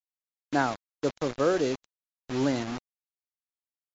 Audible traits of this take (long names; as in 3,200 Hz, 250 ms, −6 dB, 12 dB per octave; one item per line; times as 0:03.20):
a quantiser's noise floor 6 bits, dither none
MP2